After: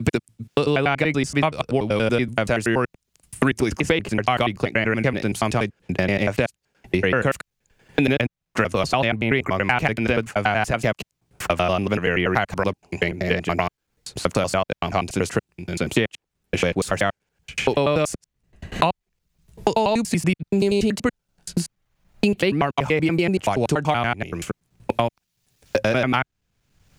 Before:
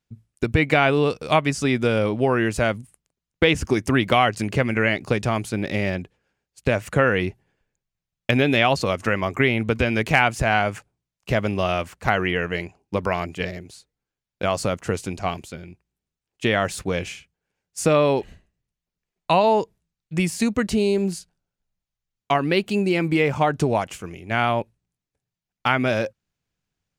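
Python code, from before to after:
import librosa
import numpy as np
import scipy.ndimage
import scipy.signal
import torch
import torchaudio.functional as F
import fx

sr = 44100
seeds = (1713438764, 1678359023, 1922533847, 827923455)

y = fx.block_reorder(x, sr, ms=95.0, group=6)
y = fx.band_squash(y, sr, depth_pct=100)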